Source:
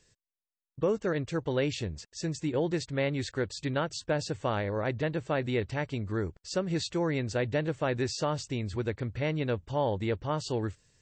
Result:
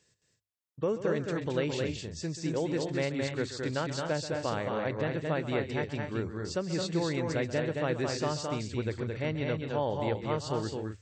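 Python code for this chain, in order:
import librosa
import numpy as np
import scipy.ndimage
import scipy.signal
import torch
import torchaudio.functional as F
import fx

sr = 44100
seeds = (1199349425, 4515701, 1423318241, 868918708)

y = scipy.signal.sosfilt(scipy.signal.butter(2, 76.0, 'highpass', fs=sr, output='sos'), x)
y = fx.hum_notches(y, sr, base_hz=50, count=2)
y = fx.echo_multitap(y, sr, ms=(133, 218, 255), db=(-13.5, -4.0, -9.5))
y = y * librosa.db_to_amplitude(-2.5)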